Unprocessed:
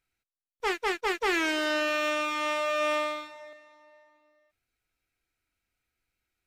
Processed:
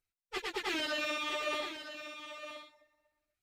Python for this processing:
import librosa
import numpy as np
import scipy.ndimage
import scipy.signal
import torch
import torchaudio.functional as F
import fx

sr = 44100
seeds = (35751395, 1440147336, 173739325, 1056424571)

p1 = fx.filter_lfo_notch(x, sr, shape='saw_down', hz=8.6, low_hz=230.0, high_hz=2800.0, q=0.74)
p2 = fx.dynamic_eq(p1, sr, hz=3700.0, q=1.7, threshold_db=-51.0, ratio=4.0, max_db=6)
p3 = fx.stretch_vocoder_free(p2, sr, factor=0.53)
p4 = p3 + fx.echo_single(p3, sr, ms=963, db=-10.5, dry=0)
y = F.gain(torch.from_numpy(p4), -2.5).numpy()